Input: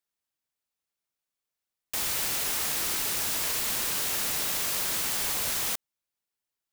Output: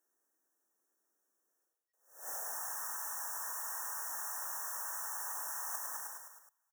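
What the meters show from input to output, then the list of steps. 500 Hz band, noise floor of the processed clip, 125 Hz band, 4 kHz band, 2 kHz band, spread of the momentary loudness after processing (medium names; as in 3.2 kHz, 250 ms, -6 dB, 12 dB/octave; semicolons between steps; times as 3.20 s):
-15.0 dB, -82 dBFS, under -40 dB, -22.5 dB, -12.5 dB, 4 LU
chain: high-pass 100 Hz; frequency-shifting echo 105 ms, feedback 59%, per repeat -110 Hz, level -11.5 dB; reverse; compression 8:1, threshold -45 dBFS, peak gain reduction 18.5 dB; reverse; FFT band-reject 1.9–5.4 kHz; high-pass sweep 320 Hz -> 930 Hz, 1.47–2.78 s; attacks held to a fixed rise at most 130 dB/s; trim +6.5 dB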